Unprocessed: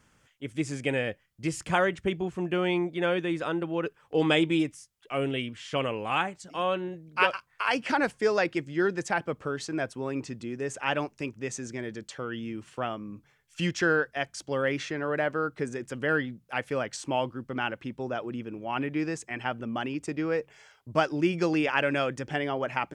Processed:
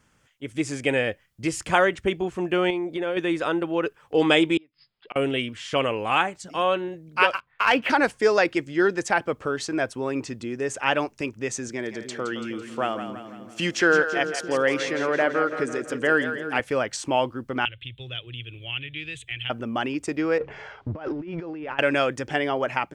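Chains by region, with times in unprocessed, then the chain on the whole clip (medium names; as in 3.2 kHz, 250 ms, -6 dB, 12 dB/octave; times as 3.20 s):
2.70–3.17 s: peaking EQ 420 Hz +5 dB 1.6 oct + compression 5:1, threshold -30 dBFS
4.57–5.16 s: peaking EQ 72 Hz -14.5 dB 0.71 oct + inverted gate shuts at -27 dBFS, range -31 dB + brick-wall FIR low-pass 5.2 kHz
7.34–7.90 s: steep low-pass 3.8 kHz + waveshaping leveller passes 1
11.69–16.60 s: high-pass 150 Hz + two-band feedback delay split 440 Hz, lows 308 ms, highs 167 ms, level -9 dB
17.65–19.50 s: FFT filter 120 Hz 0 dB, 200 Hz -29 dB, 330 Hz -21 dB, 500 Hz -20 dB, 900 Hz -28 dB, 1.6 kHz -14 dB, 3.5 kHz +12 dB, 5.2 kHz -26 dB, 8.4 kHz -12 dB + three bands compressed up and down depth 70%
20.38–21.79 s: companding laws mixed up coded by mu + compressor with a negative ratio -35 dBFS + tape spacing loss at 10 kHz 38 dB
whole clip: level rider gain up to 6 dB; dynamic bell 160 Hz, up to -7 dB, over -40 dBFS, Q 1.6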